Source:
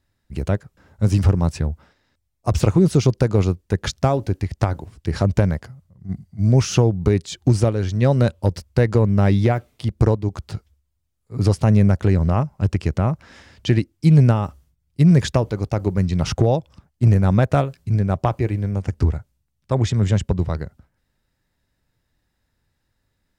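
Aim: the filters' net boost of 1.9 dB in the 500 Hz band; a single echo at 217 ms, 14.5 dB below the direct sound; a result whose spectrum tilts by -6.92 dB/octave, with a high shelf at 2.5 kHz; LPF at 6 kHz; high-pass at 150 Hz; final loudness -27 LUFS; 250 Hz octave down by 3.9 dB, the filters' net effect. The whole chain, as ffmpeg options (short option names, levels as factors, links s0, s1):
-af "highpass=150,lowpass=6000,equalizer=f=250:t=o:g=-5,equalizer=f=500:t=o:g=4,highshelf=f=2500:g=-5.5,aecho=1:1:217:0.188,volume=0.631"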